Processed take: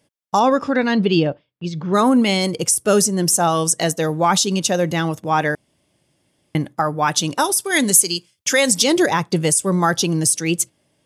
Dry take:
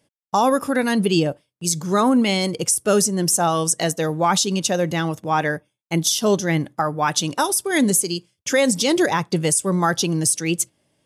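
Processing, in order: 0.39–1.93 LPF 6600 Hz -> 3000 Hz 24 dB/oct; 5.55–6.55 room tone; 7.6–8.84 tilt shelf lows -4.5 dB; gain +2 dB

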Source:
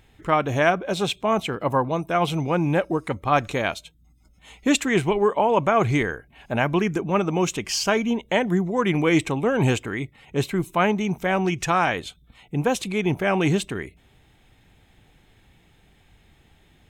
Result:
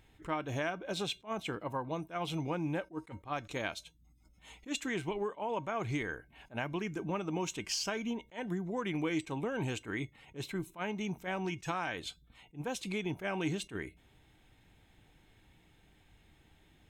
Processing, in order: dynamic EQ 4400 Hz, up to +4 dB, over -37 dBFS, Q 0.72; compressor, threshold -25 dBFS, peak gain reduction 11.5 dB; resonator 310 Hz, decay 0.18 s, harmonics odd, mix 60%; attack slew limiter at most 300 dB/s

